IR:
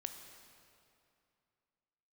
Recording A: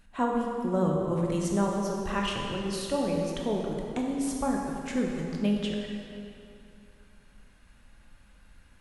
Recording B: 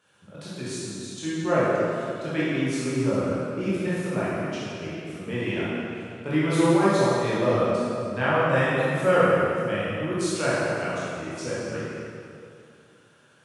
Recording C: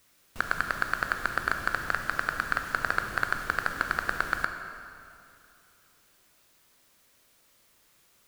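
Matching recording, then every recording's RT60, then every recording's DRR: C; 2.6 s, 2.6 s, 2.6 s; -0.5 dB, -10.0 dB, 5.5 dB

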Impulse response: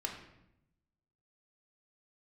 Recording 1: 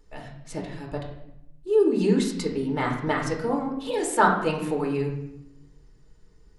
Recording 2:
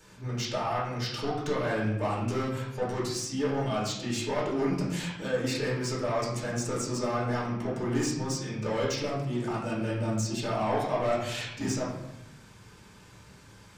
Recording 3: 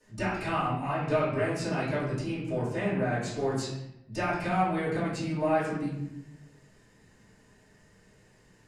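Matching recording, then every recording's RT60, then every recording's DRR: 1; 0.80 s, 0.80 s, 0.80 s; 0.0 dB, -7.5 dB, -17.0 dB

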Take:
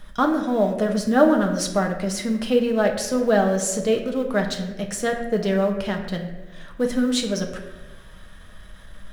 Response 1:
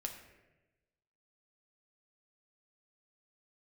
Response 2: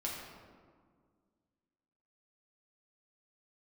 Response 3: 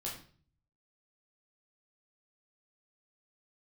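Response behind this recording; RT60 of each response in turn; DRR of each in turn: 1; 1.1 s, 1.9 s, 0.45 s; 2.5 dB, -4.0 dB, -4.5 dB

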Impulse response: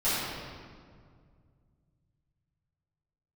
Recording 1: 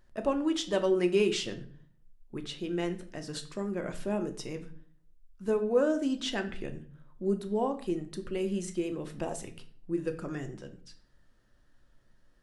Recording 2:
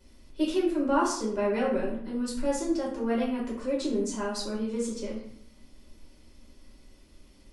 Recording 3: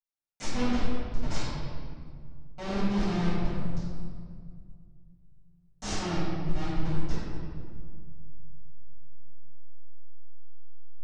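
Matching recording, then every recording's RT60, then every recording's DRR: 3; 0.50 s, 0.65 s, 2.0 s; 6.0 dB, -5.5 dB, -14.5 dB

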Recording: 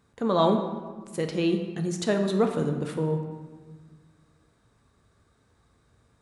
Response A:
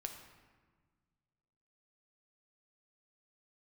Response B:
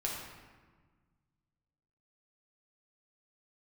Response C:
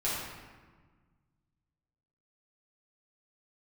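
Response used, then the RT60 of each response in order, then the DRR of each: A; 1.5 s, 1.5 s, 1.5 s; 4.0 dB, -3.5 dB, -9.5 dB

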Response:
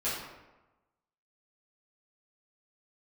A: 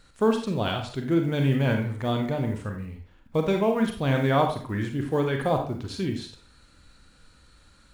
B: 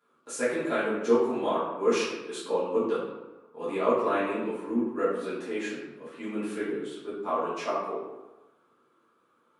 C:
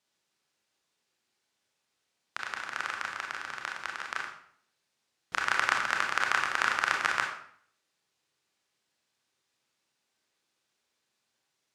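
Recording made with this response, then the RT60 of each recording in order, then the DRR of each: B; 0.45 s, 1.1 s, 0.60 s; 3.5 dB, -12.0 dB, 1.0 dB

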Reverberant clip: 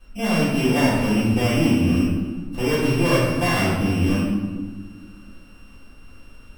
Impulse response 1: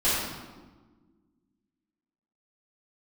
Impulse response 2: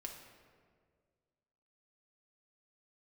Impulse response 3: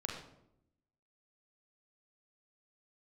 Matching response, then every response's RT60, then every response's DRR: 1; 1.4 s, 1.9 s, 0.80 s; -13.5 dB, 0.5 dB, -0.5 dB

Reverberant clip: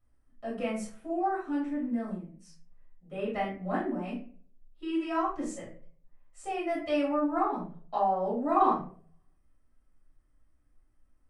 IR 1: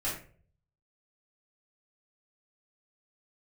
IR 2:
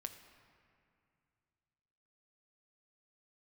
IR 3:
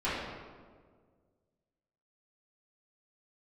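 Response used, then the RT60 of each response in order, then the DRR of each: 1; 0.45 s, 2.4 s, 1.7 s; -8.5 dB, 6.5 dB, -12.0 dB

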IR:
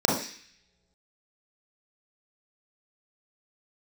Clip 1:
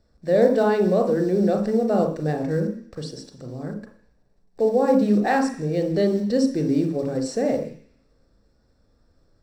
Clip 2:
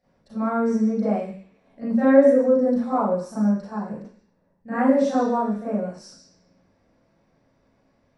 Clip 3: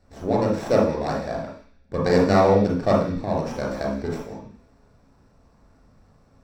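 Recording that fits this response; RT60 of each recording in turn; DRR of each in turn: 3; no single decay rate, no single decay rate, no single decay rate; 3.5 dB, -13.0 dB, -3.0 dB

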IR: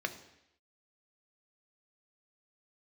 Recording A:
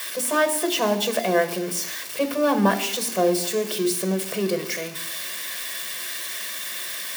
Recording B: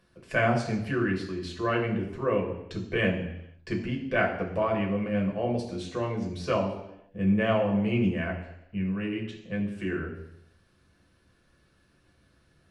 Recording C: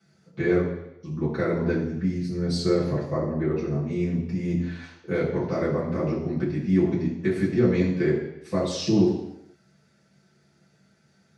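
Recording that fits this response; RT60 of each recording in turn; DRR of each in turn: A; 0.80 s, 0.80 s, 0.80 s; 7.0 dB, -0.5 dB, -9.5 dB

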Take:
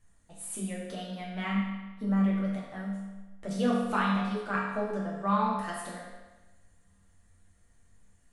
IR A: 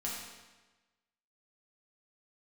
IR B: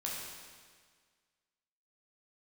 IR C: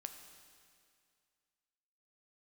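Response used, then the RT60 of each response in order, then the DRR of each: A; 1.2 s, 1.7 s, 2.2 s; -5.5 dB, -4.5 dB, 6.0 dB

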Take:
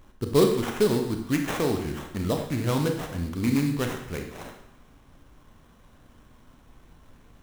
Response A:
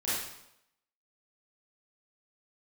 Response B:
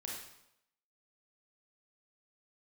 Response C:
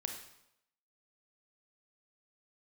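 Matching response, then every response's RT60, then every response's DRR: C; 0.80 s, 0.80 s, 0.80 s; -11.5 dB, -3.0 dB, 3.5 dB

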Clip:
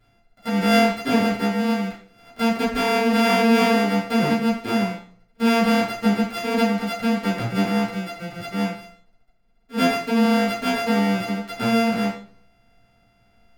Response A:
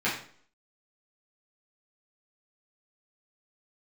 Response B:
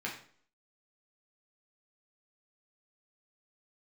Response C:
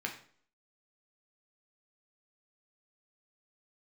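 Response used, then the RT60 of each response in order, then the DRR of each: A; 0.50 s, 0.50 s, 0.50 s; -9.5 dB, -3.5 dB, 1.0 dB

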